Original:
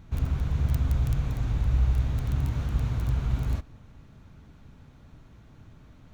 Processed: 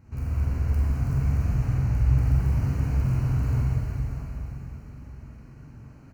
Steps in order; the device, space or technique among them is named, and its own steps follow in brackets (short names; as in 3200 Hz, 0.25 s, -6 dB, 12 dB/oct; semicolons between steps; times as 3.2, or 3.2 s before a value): PA system with an anti-feedback notch (HPF 150 Hz 6 dB/oct; Butterworth band-stop 3500 Hz, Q 2.6; limiter -25.5 dBFS, peak gain reduction 10 dB); low shelf 200 Hz +9 dB; doubler 45 ms -5 dB; plate-style reverb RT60 4.5 s, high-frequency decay 0.95×, DRR -7 dB; gain -6.5 dB